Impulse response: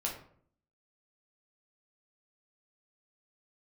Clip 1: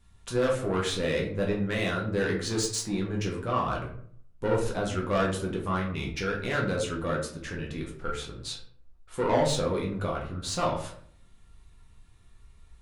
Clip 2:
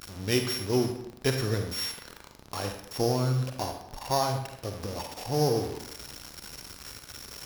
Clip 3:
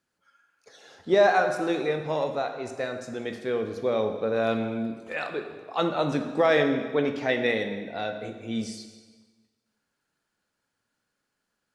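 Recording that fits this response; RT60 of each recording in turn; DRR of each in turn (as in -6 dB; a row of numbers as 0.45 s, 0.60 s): 1; 0.60 s, 0.80 s, 1.4 s; -2.0 dB, 5.0 dB, 5.5 dB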